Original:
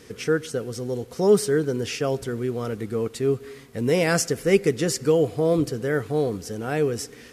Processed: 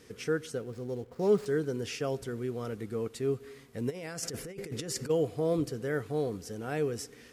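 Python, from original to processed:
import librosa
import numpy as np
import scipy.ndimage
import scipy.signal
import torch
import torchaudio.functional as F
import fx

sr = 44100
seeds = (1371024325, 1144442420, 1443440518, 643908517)

y = fx.median_filter(x, sr, points=15, at=(0.57, 1.46))
y = fx.over_compress(y, sr, threshold_db=-29.0, ratio=-1.0, at=(3.89, 5.09), fade=0.02)
y = F.gain(torch.from_numpy(y), -8.0).numpy()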